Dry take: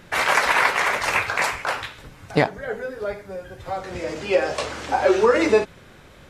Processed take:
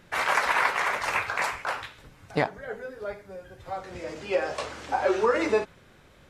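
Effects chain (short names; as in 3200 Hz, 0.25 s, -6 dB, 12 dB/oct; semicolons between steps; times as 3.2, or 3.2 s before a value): dynamic EQ 1100 Hz, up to +4 dB, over -30 dBFS, Q 0.82; gain -8 dB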